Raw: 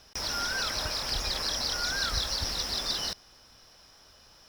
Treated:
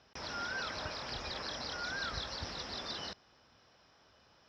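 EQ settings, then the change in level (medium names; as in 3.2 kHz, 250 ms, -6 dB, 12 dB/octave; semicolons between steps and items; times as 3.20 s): high-pass 85 Hz 12 dB/octave; distance through air 170 m; treble shelf 7.2 kHz -5.5 dB; -4.0 dB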